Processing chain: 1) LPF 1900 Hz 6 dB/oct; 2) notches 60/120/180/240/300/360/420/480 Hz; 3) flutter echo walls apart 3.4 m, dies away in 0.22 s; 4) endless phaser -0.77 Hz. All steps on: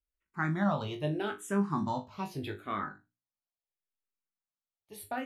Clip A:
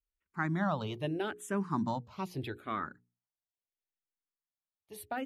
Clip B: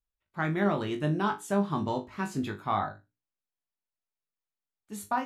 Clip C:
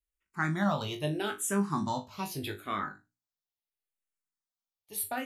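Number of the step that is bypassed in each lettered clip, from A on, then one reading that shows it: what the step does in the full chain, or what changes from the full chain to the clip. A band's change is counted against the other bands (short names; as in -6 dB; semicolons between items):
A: 3, loudness change -2.0 LU; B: 4, 1 kHz band +2.0 dB; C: 1, 8 kHz band +12.0 dB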